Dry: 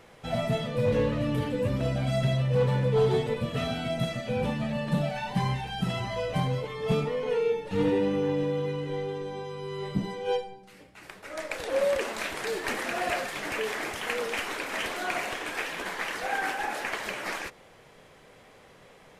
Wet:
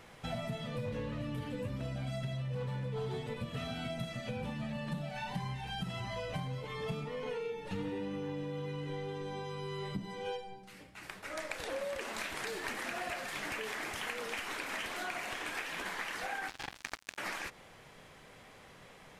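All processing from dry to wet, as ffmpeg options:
ffmpeg -i in.wav -filter_complex "[0:a]asettb=1/sr,asplit=3[link_01][link_02][link_03];[link_01]atrim=end=16.484[link_04];[link_02]atrim=start=16.48:end=17.18,asetpts=PTS-STARTPTS,afade=type=in:duration=0.004:curve=qsin,afade=type=out:start_time=0.696:duration=0.004:curve=qsin,acrossover=split=6300[link_05][link_06];[link_06]acompressor=threshold=-57dB:ratio=4:attack=1:release=60[link_07];[link_05][link_07]amix=inputs=2:normalize=0,acrusher=bits=3:mix=0:aa=0.5[link_08];[link_03]atrim=start=17.176[link_09];[link_04][link_08]acrossfade=duration=0.004:curve1=hsin:curve2=qsin[link_10];[link_10][link_09]acrossfade=duration=0.004:curve1=qsin:curve2=hsin,equalizer=frequency=470:width=1.2:gain=-5,acompressor=threshold=-36dB:ratio=6" out.wav

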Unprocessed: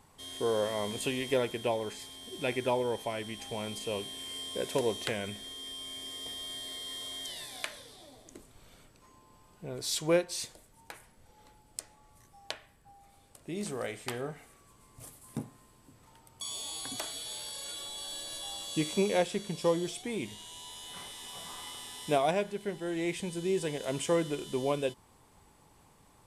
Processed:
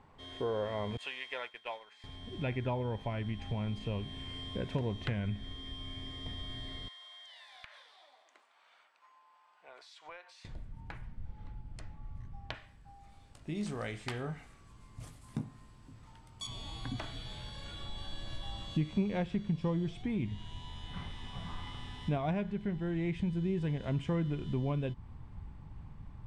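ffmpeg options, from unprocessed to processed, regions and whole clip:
ffmpeg -i in.wav -filter_complex "[0:a]asettb=1/sr,asplit=3[link_01][link_02][link_03];[link_01]atrim=end=0.974[link_04];[link_02]atrim=start=0.97:end=2.04,asetpts=PTS-STARTPTS,afade=type=in:duration=0.004:curve=qsin,afade=type=out:start_time=1.066:duration=0.004:curve=qsin,highpass=1100,agate=range=-33dB:threshold=-40dB:ratio=3:release=100:detection=peak[link_05];[link_03]atrim=start=2.036[link_06];[link_04][link_05]acrossfade=duration=0.004:curve1=hsin:curve2=qsin[link_07];[link_07][link_06]acrossfade=duration=0.004:curve1=qsin:curve2=hsin,asettb=1/sr,asplit=3[link_08][link_09][link_10];[link_08]atrim=end=6.884[link_11];[link_09]atrim=start=6.88:end=10.45,asetpts=PTS-STARTPTS,afade=type=in:duration=0.004:curve=qsin,afade=type=out:start_time=3.566:duration=0.004:curve=qsin,highpass=frequency=710:width=0.5412,highpass=frequency=710:width=1.3066,acompressor=threshold=-45dB:ratio=4:attack=3.2:release=140:knee=1:detection=peak[link_12];[link_10]atrim=start=10.446[link_13];[link_11][link_12]acrossfade=duration=0.004:curve1=hsin:curve2=qsin[link_14];[link_14][link_13]acrossfade=duration=0.004:curve1=qsin:curve2=hsin,asettb=1/sr,asplit=3[link_15][link_16][link_17];[link_15]atrim=end=12.544[link_18];[link_16]atrim=start=12.54:end=16.47,asetpts=PTS-STARTPTS,afade=type=in:duration=0.004:curve=qsin,afade=type=out:start_time=3.926:duration=0.004:curve=qsin,bass=frequency=250:gain=-11,treble=frequency=4000:gain=14,asplit=2[link_19][link_20];[link_20]adelay=19,volume=-10.5dB[link_21];[link_19][link_21]amix=inputs=2:normalize=0,atrim=end_sample=173313[link_22];[link_17]atrim=start=16.466[link_23];[link_18][link_22]acrossfade=duration=0.004:curve1=hsin:curve2=qsin[link_24];[link_24][link_23]acrossfade=duration=0.004:curve1=qsin:curve2=hsin,lowpass=2400,asubboost=boost=10.5:cutoff=140,acompressor=threshold=-36dB:ratio=2,volume=1.5dB" out.wav

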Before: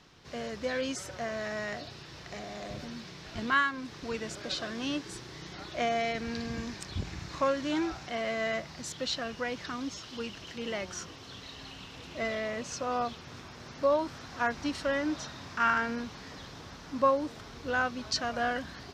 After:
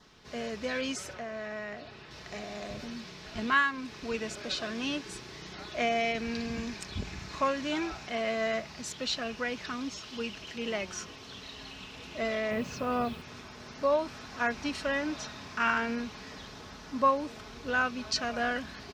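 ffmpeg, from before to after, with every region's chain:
ffmpeg -i in.wav -filter_complex "[0:a]asettb=1/sr,asplit=3[link_01][link_02][link_03];[link_01]atrim=end=1.134[link_04];[link_02]atrim=start=1.13:end=2.11,asetpts=PTS-STARTPTS,afade=type=in:duration=0.004:curve=qsin,afade=type=out:start_time=0.976:duration=0.004:curve=qsin,bass=frequency=250:gain=-1,treble=frequency=4000:gain=-7,acrossover=split=310|3100[link_05][link_06][link_07];[link_05]acompressor=threshold=-48dB:ratio=4[link_08];[link_06]acompressor=threshold=-39dB:ratio=4[link_09];[link_07]acompressor=threshold=-59dB:ratio=4[link_10];[link_08][link_09][link_10]amix=inputs=3:normalize=0[link_11];[link_03]atrim=start=2.106[link_12];[link_04][link_11]acrossfade=duration=0.004:curve1=hsin:curve2=qsin[link_13];[link_13][link_12]acrossfade=duration=0.004:curve1=qsin:curve2=hsin,asettb=1/sr,asplit=3[link_14][link_15][link_16];[link_14]atrim=end=12.514[link_17];[link_15]atrim=start=12.51:end=13.22,asetpts=PTS-STARTPTS,afade=type=in:duration=0.004:curve=qsin,afade=type=out:start_time=0.706:duration=0.004:curve=qsin,lowpass=4300,equalizer=frequency=120:width=0.44:gain=8,acrusher=bits=8:mix=0:aa=0.5[link_18];[link_16]atrim=start=13.216[link_19];[link_17][link_18]acrossfade=duration=0.004:curve1=hsin:curve2=qsin[link_20];[link_20][link_19]acrossfade=duration=0.004:curve1=qsin:curve2=hsin,equalizer=frequency=160:width=5.3:gain=-4.5,aecho=1:1:4.7:0.33,adynamicequalizer=threshold=0.00158:dfrequency=2500:dqfactor=5.5:tfrequency=2500:tqfactor=5.5:attack=5:release=100:ratio=0.375:range=3:mode=boostabove:tftype=bell" out.wav

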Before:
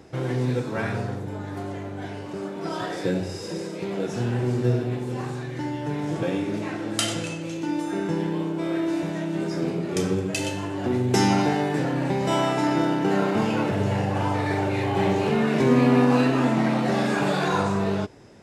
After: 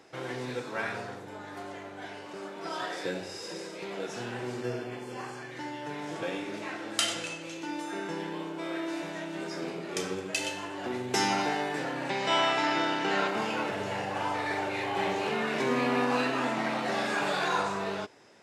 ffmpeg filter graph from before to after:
ffmpeg -i in.wav -filter_complex "[0:a]asettb=1/sr,asplit=3[link_01][link_02][link_03];[link_01]atrim=end=4.614[link_04];[link_02]atrim=start=4.61:end=5.51,asetpts=PTS-STARTPTS,afade=type=in:duration=0.004:curve=qsin,afade=type=out:start_time=0.896:duration=0.004:curve=qsin,asuperstop=centerf=3800:order=20:qfactor=7.6,bandreject=frequency=50:width_type=h:width=6,bandreject=frequency=100:width_type=h:width=6,bandreject=frequency=150:width_type=h:width=6[link_05];[link_03]atrim=start=5.506[link_06];[link_04][link_05]acrossfade=duration=0.004:curve1=hsin:curve2=qsin[link_07];[link_07][link_06]acrossfade=duration=0.004:curve1=qsin:curve2=hsin,asettb=1/sr,asplit=3[link_08][link_09][link_10];[link_08]atrim=end=12.094[link_11];[link_09]atrim=start=12.09:end=13.28,asetpts=PTS-STARTPTS,afade=type=in:duration=0.004:curve=qsin,afade=type=out:start_time=1.186:duration=0.004:curve=qsin,acrossover=split=4300[link_12][link_13];[link_13]acompressor=threshold=-55dB:ratio=4:attack=1:release=60[link_14];[link_12][link_14]amix=inputs=2:normalize=0,lowpass=8000,highshelf=frequency=2200:gain=11[link_15];[link_10]atrim=start=13.276[link_16];[link_11][link_15]acrossfade=duration=0.004:curve1=hsin:curve2=qsin[link_17];[link_17][link_16]acrossfade=duration=0.004:curve1=qsin:curve2=hsin,highpass=frequency=1000:poles=1,highshelf=frequency=7100:gain=-6" out.wav

